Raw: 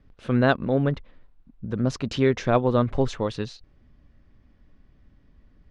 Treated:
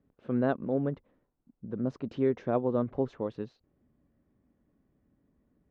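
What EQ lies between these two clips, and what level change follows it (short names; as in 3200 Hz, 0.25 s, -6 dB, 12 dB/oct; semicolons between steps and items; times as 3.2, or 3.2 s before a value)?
band-pass 270 Hz, Q 0.64; low shelf 220 Hz -7 dB; -3.0 dB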